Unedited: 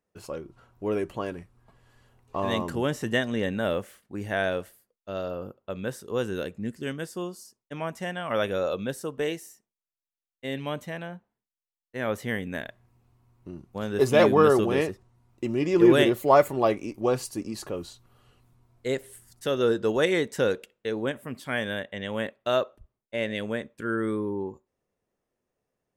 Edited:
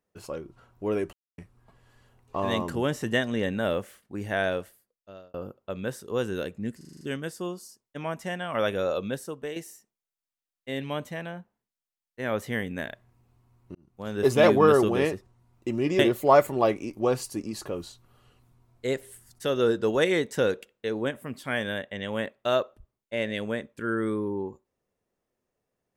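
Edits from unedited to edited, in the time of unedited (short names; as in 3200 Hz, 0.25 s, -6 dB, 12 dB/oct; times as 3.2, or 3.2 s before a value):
1.13–1.38 mute
4.53–5.34 fade out
6.77 stutter 0.04 s, 7 plays
8.85–9.32 fade out, to -9 dB
13.51–13.96 fade in
15.75–16 cut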